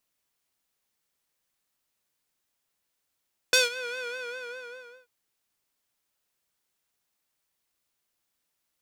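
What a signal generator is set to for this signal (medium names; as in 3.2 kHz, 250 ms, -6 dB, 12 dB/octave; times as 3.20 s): synth patch with vibrato B4, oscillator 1 square, oscillator 2 saw, interval 0 st, sub -25.5 dB, noise -19 dB, filter bandpass, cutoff 1.3 kHz, Q 0.86, filter envelope 2 oct, filter sustain 35%, attack 2.4 ms, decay 0.16 s, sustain -20 dB, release 1.10 s, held 0.44 s, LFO 5 Hz, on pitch 72 cents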